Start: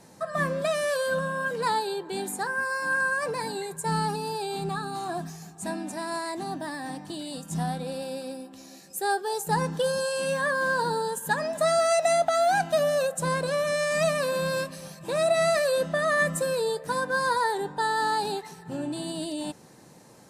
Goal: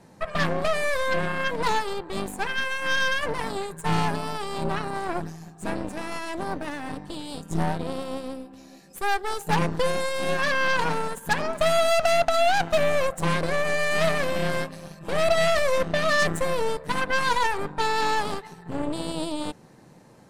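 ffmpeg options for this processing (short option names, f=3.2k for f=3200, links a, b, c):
-af "bass=f=250:g=3,treble=f=4k:g=-8,aeval=exprs='0.237*(cos(1*acos(clip(val(0)/0.237,-1,1)))-cos(1*PI/2))+0.0188*(cos(3*acos(clip(val(0)/0.237,-1,1)))-cos(3*PI/2))+0.0376*(cos(8*acos(clip(val(0)/0.237,-1,1)))-cos(8*PI/2))':c=same,volume=2dB"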